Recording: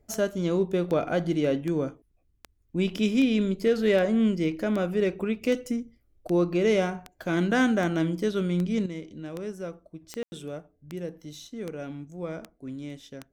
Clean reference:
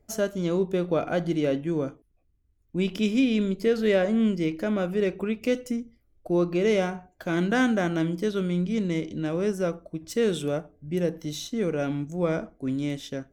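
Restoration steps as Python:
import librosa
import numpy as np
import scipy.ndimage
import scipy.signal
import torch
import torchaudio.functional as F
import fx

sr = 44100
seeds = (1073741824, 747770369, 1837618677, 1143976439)

y = fx.fix_declip(x, sr, threshold_db=-14.5)
y = fx.fix_declick_ar(y, sr, threshold=10.0)
y = fx.fix_ambience(y, sr, seeds[0], print_start_s=2.19, print_end_s=2.69, start_s=10.23, end_s=10.32)
y = fx.fix_level(y, sr, at_s=8.86, step_db=9.0)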